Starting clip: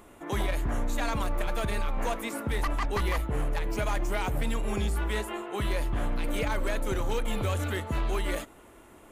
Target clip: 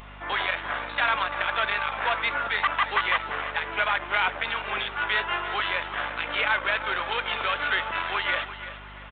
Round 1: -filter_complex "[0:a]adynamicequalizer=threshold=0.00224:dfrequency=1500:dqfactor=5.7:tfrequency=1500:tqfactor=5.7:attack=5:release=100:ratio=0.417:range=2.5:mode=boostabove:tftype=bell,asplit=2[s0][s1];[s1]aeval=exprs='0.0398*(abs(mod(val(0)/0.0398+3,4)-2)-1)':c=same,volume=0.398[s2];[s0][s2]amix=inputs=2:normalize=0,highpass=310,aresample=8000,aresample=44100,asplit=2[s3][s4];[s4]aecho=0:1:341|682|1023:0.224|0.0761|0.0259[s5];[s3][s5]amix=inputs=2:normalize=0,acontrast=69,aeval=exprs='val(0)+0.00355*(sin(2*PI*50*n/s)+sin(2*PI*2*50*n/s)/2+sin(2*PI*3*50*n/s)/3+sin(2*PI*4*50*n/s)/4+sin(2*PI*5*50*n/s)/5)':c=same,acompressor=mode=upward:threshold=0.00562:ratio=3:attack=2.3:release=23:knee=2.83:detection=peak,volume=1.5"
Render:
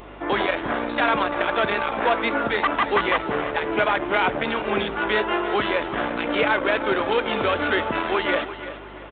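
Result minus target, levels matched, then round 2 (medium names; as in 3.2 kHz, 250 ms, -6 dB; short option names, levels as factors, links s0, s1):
250 Hz band +14.5 dB
-filter_complex "[0:a]adynamicequalizer=threshold=0.00224:dfrequency=1500:dqfactor=5.7:tfrequency=1500:tqfactor=5.7:attack=5:release=100:ratio=0.417:range=2.5:mode=boostabove:tftype=bell,asplit=2[s0][s1];[s1]aeval=exprs='0.0398*(abs(mod(val(0)/0.0398+3,4)-2)-1)':c=same,volume=0.398[s2];[s0][s2]amix=inputs=2:normalize=0,highpass=1100,aresample=8000,aresample=44100,asplit=2[s3][s4];[s4]aecho=0:1:341|682|1023:0.224|0.0761|0.0259[s5];[s3][s5]amix=inputs=2:normalize=0,acontrast=69,aeval=exprs='val(0)+0.00355*(sin(2*PI*50*n/s)+sin(2*PI*2*50*n/s)/2+sin(2*PI*3*50*n/s)/3+sin(2*PI*4*50*n/s)/4+sin(2*PI*5*50*n/s)/5)':c=same,acompressor=mode=upward:threshold=0.00562:ratio=3:attack=2.3:release=23:knee=2.83:detection=peak,volume=1.5"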